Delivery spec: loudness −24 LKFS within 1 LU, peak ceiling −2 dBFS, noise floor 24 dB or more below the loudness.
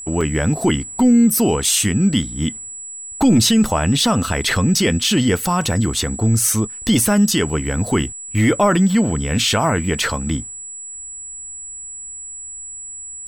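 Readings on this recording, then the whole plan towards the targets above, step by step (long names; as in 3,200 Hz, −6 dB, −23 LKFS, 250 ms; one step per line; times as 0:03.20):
number of dropouts 3; longest dropout 3.0 ms; interfering tone 7,800 Hz; level of the tone −30 dBFS; integrated loudness −17.0 LKFS; sample peak −6.0 dBFS; target loudness −24.0 LKFS
→ repair the gap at 0:00.21/0:03.64/0:04.56, 3 ms
notch filter 7,800 Hz, Q 30
level −7 dB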